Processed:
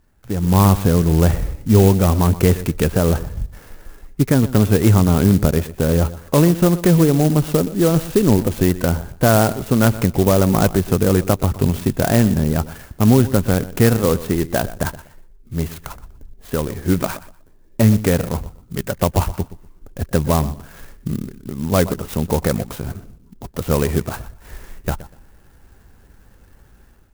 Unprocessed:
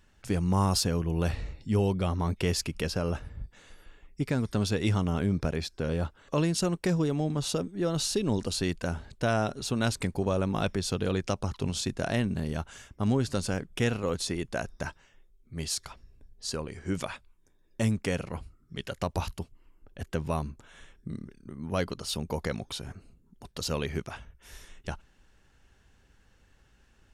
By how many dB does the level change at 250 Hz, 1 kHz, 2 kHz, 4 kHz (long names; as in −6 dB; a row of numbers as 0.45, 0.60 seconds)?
+14.0, +11.5, +9.0, +4.0 decibels